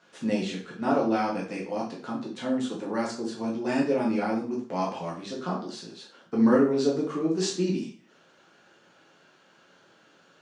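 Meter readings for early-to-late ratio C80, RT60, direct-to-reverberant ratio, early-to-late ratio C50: 11.0 dB, 0.45 s, -4.0 dB, 7.0 dB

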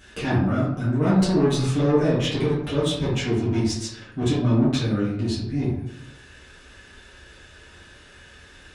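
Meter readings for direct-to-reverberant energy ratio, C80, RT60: -11.0 dB, 5.5 dB, 0.80 s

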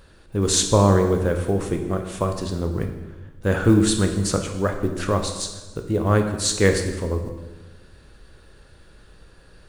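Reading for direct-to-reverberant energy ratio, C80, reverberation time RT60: 5.0 dB, 9.0 dB, 1.2 s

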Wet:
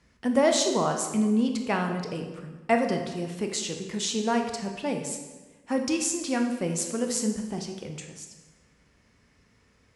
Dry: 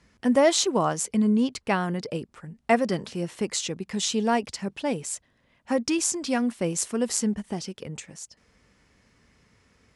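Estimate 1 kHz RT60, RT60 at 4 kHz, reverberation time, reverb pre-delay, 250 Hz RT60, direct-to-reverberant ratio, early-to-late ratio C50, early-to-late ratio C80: 1.2 s, 1.0 s, 1.3 s, 18 ms, 1.5 s, 3.5 dB, 6.0 dB, 8.5 dB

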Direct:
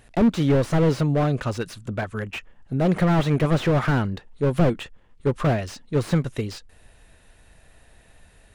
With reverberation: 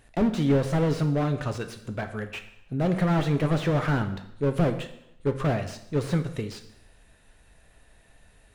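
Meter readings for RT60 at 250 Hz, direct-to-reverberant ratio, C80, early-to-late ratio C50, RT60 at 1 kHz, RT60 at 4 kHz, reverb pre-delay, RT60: 0.80 s, 7.0 dB, 13.5 dB, 11.5 dB, 0.80 s, 0.75 s, 7 ms, 0.80 s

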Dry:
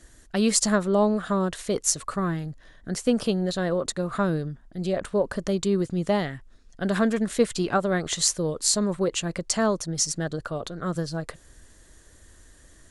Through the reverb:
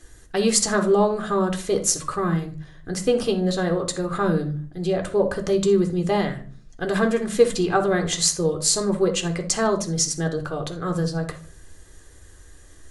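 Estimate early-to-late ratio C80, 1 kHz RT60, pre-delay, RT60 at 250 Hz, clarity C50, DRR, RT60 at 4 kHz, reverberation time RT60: 16.5 dB, 0.35 s, 3 ms, 0.65 s, 11.5 dB, 5.0 dB, 0.30 s, 0.40 s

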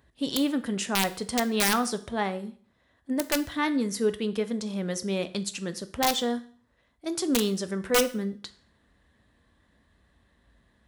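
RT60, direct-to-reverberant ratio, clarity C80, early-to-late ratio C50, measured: 0.50 s, 11.0 dB, 20.0 dB, 16.5 dB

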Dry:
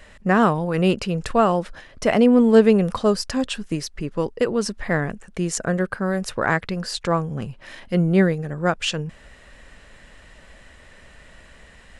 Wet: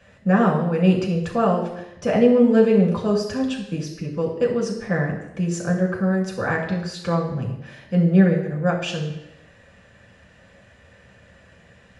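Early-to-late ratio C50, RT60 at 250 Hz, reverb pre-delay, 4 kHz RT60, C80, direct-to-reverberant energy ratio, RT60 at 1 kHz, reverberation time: 6.0 dB, 0.85 s, 3 ms, 0.85 s, 8.5 dB, -2.0 dB, 0.85 s, 0.85 s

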